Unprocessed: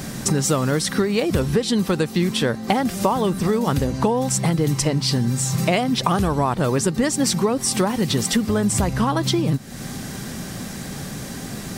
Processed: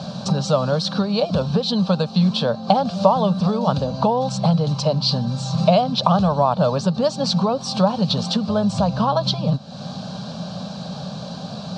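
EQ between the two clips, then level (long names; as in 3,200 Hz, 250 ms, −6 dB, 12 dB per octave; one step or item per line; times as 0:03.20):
loudspeaker in its box 140–4,600 Hz, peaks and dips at 180 Hz +8 dB, 600 Hz +8 dB, 4,200 Hz +8 dB
phaser with its sweep stopped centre 820 Hz, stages 4
+3.0 dB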